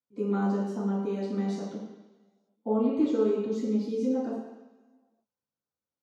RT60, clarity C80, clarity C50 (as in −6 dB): 1.1 s, 4.5 dB, 1.5 dB